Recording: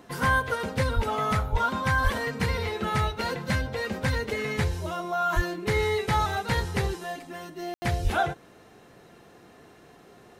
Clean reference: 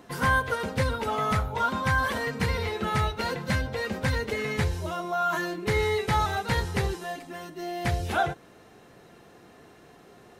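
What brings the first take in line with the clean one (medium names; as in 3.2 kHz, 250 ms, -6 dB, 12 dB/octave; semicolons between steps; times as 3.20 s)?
de-plosive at 0.95/1.51/2.03/5.35/8.03 s; room tone fill 7.74–7.82 s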